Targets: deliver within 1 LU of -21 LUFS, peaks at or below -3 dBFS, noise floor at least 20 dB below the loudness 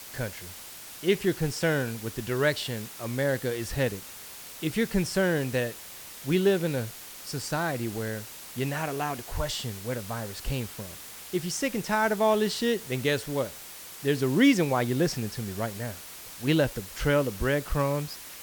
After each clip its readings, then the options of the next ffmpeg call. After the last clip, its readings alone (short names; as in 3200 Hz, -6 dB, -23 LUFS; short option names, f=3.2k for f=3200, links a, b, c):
noise floor -44 dBFS; noise floor target -49 dBFS; loudness -28.5 LUFS; peak -9.5 dBFS; loudness target -21.0 LUFS
-> -af "afftdn=nr=6:nf=-44"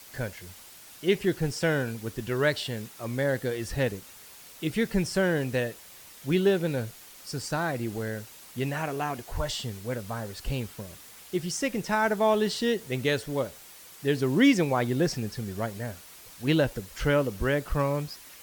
noise floor -49 dBFS; loudness -28.5 LUFS; peak -9.5 dBFS; loudness target -21.0 LUFS
-> -af "volume=7.5dB,alimiter=limit=-3dB:level=0:latency=1"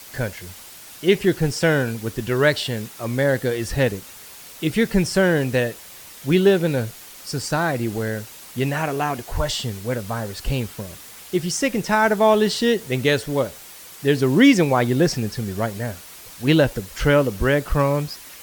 loudness -21.0 LUFS; peak -3.0 dBFS; noise floor -42 dBFS